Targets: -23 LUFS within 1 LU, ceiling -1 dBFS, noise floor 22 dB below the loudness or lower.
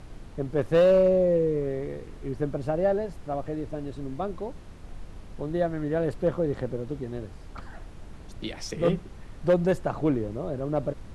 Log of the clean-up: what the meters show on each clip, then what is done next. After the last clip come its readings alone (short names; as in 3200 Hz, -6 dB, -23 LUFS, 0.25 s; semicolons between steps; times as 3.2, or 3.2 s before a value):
clipped 0.4%; flat tops at -14.5 dBFS; noise floor -44 dBFS; noise floor target -50 dBFS; loudness -27.5 LUFS; peak -14.5 dBFS; loudness target -23.0 LUFS
-> clip repair -14.5 dBFS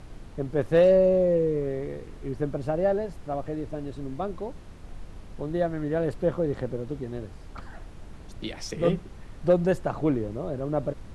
clipped 0.0%; noise floor -44 dBFS; noise floor target -49 dBFS
-> noise print and reduce 6 dB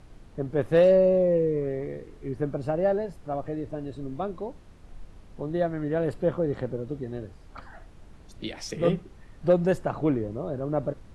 noise floor -50 dBFS; loudness -27.0 LUFS; peak -9.0 dBFS; loudness target -23.0 LUFS
-> gain +4 dB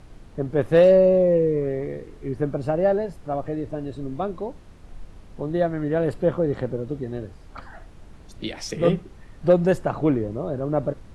loudness -23.0 LUFS; peak -5.0 dBFS; noise floor -46 dBFS